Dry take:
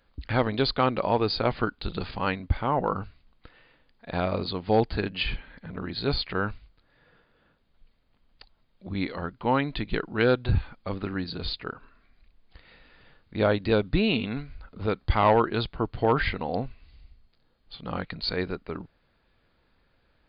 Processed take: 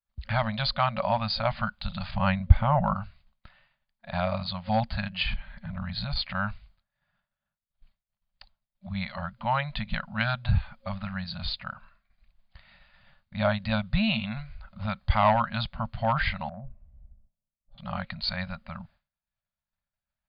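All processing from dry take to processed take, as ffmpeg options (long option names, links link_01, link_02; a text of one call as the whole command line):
ffmpeg -i in.wav -filter_complex "[0:a]asettb=1/sr,asplit=3[link_01][link_02][link_03];[link_01]atrim=end=2.114[link_04];[link_02]atrim=start=2.11:end=2.94,asetpts=PTS-STARTPTS,afade=type=in:duration=0.004:curve=qsin,afade=type=out:start_time=0.826:duration=0.004:curve=qsin,lowpass=frequency=4300:width=0.5412,lowpass=frequency=4300:width=1.3066,lowshelf=frequency=330:gain=9.5[link_05];[link_03]atrim=start=2.936[link_06];[link_04][link_05]acrossfade=duration=0.004:curve1=hsin:curve2=qsin[link_07];[link_07][link_06]acrossfade=duration=0.004:curve1=qsin:curve2=hsin,asettb=1/sr,asplit=3[link_08][link_09][link_10];[link_08]atrim=end=5.334[link_11];[link_09]atrim=start=5.33:end=6.16,asetpts=PTS-STARTPTS,afade=type=in:duration=0.004:curve=qsin,afade=type=out:start_time=0.826:duration=0.004:curve=qsin,lowshelf=frequency=120:gain=9,acompressor=threshold=-26dB:ratio=3:attack=3.2:release=140:knee=1:detection=peak[link_12];[link_10]atrim=start=6.156[link_13];[link_11][link_12]acrossfade=duration=0.004:curve1=hsin:curve2=qsin[link_14];[link_14][link_13]acrossfade=duration=0.004:curve1=qsin:curve2=hsin,asettb=1/sr,asplit=3[link_15][link_16][link_17];[link_15]atrim=end=16.494[link_18];[link_16]atrim=start=16.49:end=17.78,asetpts=PTS-STARTPTS,afade=type=in:duration=0.004:curve=qsin,afade=type=out:start_time=1.286:duration=0.004:curve=qsin,lowpass=frequency=430:width_type=q:width=5.1,acompressor=threshold=-29dB:ratio=5:attack=3.2:release=140:knee=1:detection=peak[link_19];[link_17]atrim=start=17.776[link_20];[link_18][link_19]acrossfade=duration=0.004:curve1=hsin:curve2=qsin[link_21];[link_21][link_20]acrossfade=duration=0.004:curve1=qsin:curve2=hsin,afftfilt=real='re*(1-between(b*sr/4096,230,540))':imag='im*(1-between(b*sr/4096,230,540))':win_size=4096:overlap=0.75,agate=range=-33dB:threshold=-51dB:ratio=3:detection=peak" out.wav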